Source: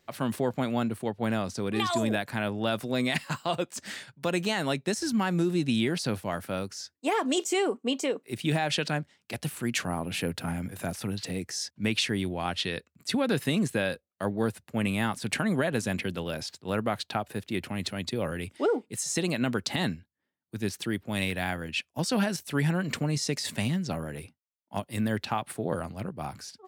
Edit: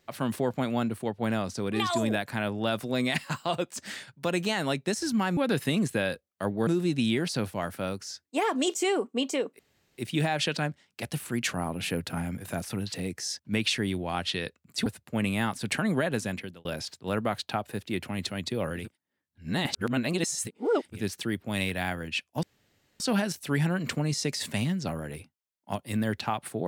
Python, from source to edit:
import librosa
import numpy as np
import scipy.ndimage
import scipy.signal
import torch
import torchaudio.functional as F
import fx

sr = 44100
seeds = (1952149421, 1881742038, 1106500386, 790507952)

y = fx.edit(x, sr, fx.insert_room_tone(at_s=8.29, length_s=0.39),
    fx.move(start_s=13.17, length_s=1.3, to_s=5.37),
    fx.fade_out_span(start_s=15.59, length_s=0.67, curve='qsin'),
    fx.reverse_span(start_s=18.47, length_s=2.08, crossfade_s=0.24),
    fx.insert_room_tone(at_s=22.04, length_s=0.57), tone=tone)